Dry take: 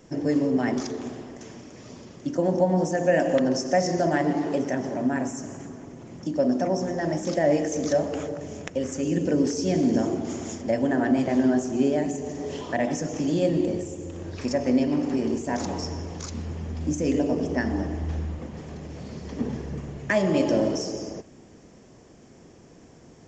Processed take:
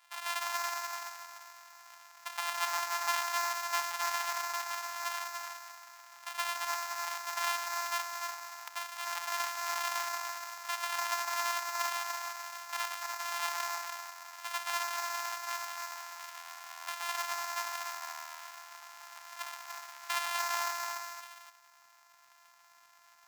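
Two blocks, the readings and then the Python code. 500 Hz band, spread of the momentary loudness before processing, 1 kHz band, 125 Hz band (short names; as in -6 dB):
-22.0 dB, 15 LU, -0.5 dB, under -40 dB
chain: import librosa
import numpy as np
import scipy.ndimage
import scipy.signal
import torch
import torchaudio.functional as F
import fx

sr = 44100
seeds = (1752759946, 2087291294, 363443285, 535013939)

p1 = np.r_[np.sort(x[:len(x) // 128 * 128].reshape(-1, 128), axis=1).ravel(), x[len(x) // 128 * 128:]]
p2 = scipy.signal.sosfilt(scipy.signal.ellip(4, 1.0, 70, 860.0, 'highpass', fs=sr, output='sos'), p1)
p3 = 10.0 ** (-18.5 / 20.0) * np.tanh(p2 / 10.0 ** (-18.5 / 20.0))
p4 = p2 + (p3 * 10.0 ** (-10.0 / 20.0))
p5 = fx.dmg_crackle(p4, sr, seeds[0], per_s=14.0, level_db=-47.0)
p6 = p5 + fx.echo_single(p5, sr, ms=293, db=-5.0, dry=0)
y = p6 * 10.0 ** (-8.0 / 20.0)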